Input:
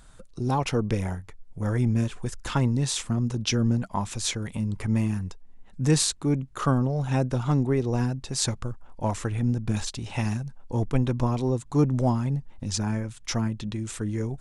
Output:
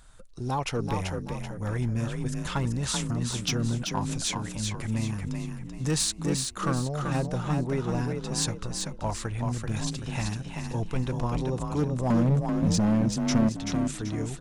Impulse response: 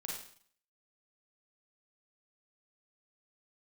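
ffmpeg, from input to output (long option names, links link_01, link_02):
-filter_complex "[0:a]asetnsamples=nb_out_samples=441:pad=0,asendcmd='12.1 equalizer g 12;13.49 equalizer g -4',equalizer=frequency=230:width_type=o:width=2.3:gain=-5,asoftclip=type=hard:threshold=-18.5dB,asplit=6[link_01][link_02][link_03][link_04][link_05][link_06];[link_02]adelay=384,afreqshift=33,volume=-4.5dB[link_07];[link_03]adelay=768,afreqshift=66,volume=-13.4dB[link_08];[link_04]adelay=1152,afreqshift=99,volume=-22.2dB[link_09];[link_05]adelay=1536,afreqshift=132,volume=-31.1dB[link_10];[link_06]adelay=1920,afreqshift=165,volume=-40dB[link_11];[link_01][link_07][link_08][link_09][link_10][link_11]amix=inputs=6:normalize=0,volume=-1.5dB"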